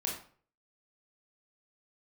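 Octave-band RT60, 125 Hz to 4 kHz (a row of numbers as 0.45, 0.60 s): 0.55, 0.45, 0.50, 0.45, 0.40, 0.35 s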